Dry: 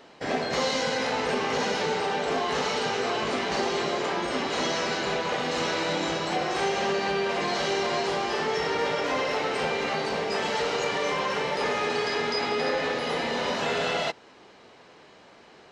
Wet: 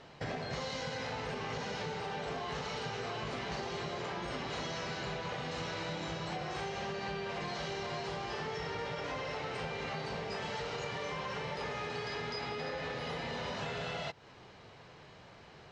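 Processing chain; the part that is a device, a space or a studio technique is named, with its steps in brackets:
jukebox (low-pass filter 7,200 Hz 12 dB per octave; low shelf with overshoot 180 Hz +10 dB, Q 1.5; downward compressor, threshold −33 dBFS, peak gain reduction 10.5 dB)
level −3 dB

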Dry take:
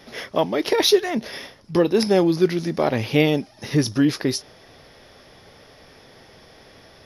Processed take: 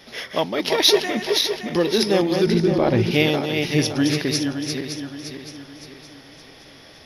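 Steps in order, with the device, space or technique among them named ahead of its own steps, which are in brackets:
feedback delay that plays each chunk backwards 283 ms, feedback 65%, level −5 dB
0:02.46–0:03.11: spectral tilt −2.5 dB per octave
presence and air boost (parametric band 3,400 Hz +6 dB 1.9 octaves; high-shelf EQ 10,000 Hz +5 dB)
level −2.5 dB

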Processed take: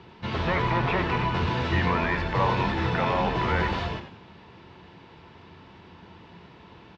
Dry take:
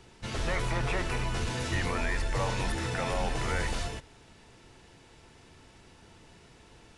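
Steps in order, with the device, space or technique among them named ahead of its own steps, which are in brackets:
frequency-shifting delay pedal into a guitar cabinet (echo with shifted repeats 92 ms, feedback 33%, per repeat −88 Hz, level −9.5 dB; loudspeaker in its box 79–4,000 Hz, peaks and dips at 85 Hz +5 dB, 180 Hz +8 dB, 360 Hz +3 dB, 1,000 Hz +8 dB)
level +4.5 dB

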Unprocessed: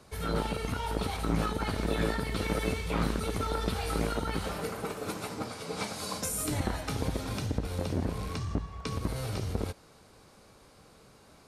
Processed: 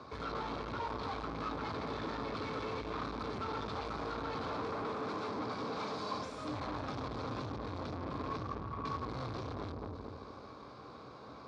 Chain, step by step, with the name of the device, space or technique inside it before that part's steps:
analogue delay pedal into a guitar amplifier (bucket-brigade delay 222 ms, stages 1,024, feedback 32%, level −3.5 dB; tube saturation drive 44 dB, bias 0.45; loudspeaker in its box 86–4,400 Hz, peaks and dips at 94 Hz −4 dB, 180 Hz −8 dB, 270 Hz +4 dB, 1,100 Hz +9 dB, 1,900 Hz −6 dB, 2,900 Hz −9 dB)
level +7 dB

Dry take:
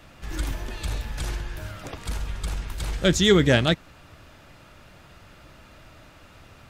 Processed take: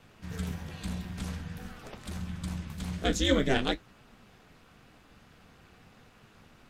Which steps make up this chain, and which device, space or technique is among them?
alien voice (ring modulation 130 Hz; flanger 0.49 Hz, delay 7.8 ms, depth 9.5 ms, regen −50%)
level −1 dB

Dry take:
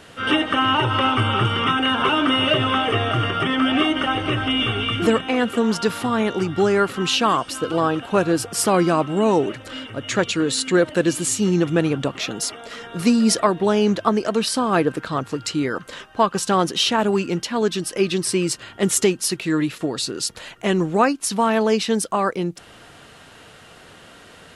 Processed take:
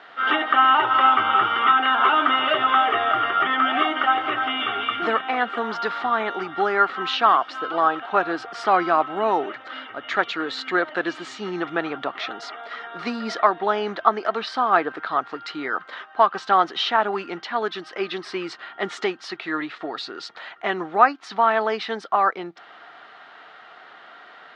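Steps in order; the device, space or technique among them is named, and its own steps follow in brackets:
phone earpiece (loudspeaker in its box 470–3,800 Hz, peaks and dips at 510 Hz −7 dB, 750 Hz +7 dB, 1,300 Hz +7 dB, 1,900 Hz +4 dB, 2,700 Hz −6 dB)
level −1 dB

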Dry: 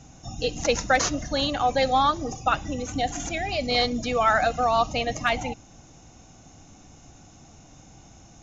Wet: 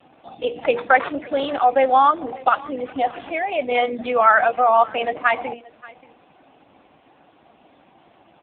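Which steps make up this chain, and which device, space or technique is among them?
mains-hum notches 60/120/180/240/300/360/420/480 Hz
dynamic equaliser 2,900 Hz, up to −3 dB, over −41 dBFS, Q 3.9
satellite phone (band-pass filter 330–3,400 Hz; single-tap delay 579 ms −22 dB; level +7.5 dB; AMR narrowband 5.15 kbit/s 8,000 Hz)

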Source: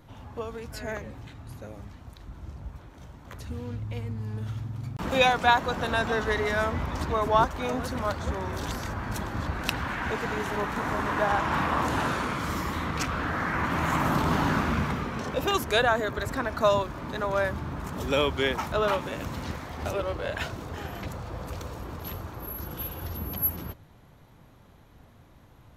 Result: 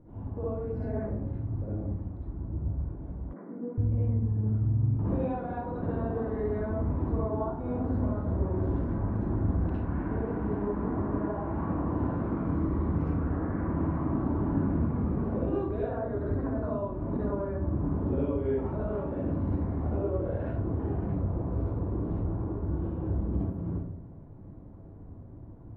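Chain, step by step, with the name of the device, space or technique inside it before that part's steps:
television next door (downward compressor 5 to 1, threshold −32 dBFS, peak gain reduction 14.5 dB; low-pass filter 470 Hz 12 dB per octave; convolution reverb RT60 0.65 s, pre-delay 52 ms, DRR −8 dB)
0:03.33–0:03.78: Chebyshev band-pass filter 180–2,200 Hz, order 5

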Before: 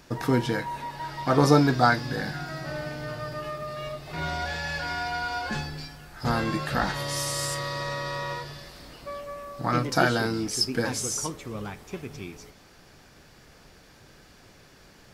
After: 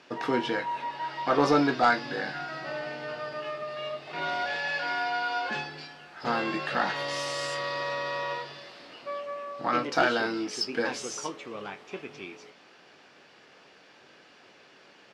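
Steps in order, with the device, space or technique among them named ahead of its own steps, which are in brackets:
intercom (band-pass filter 320–4,200 Hz; parametric band 2,800 Hz +5 dB 0.4 octaves; soft clipping −12.5 dBFS, distortion −18 dB; double-tracking delay 21 ms −10.5 dB)

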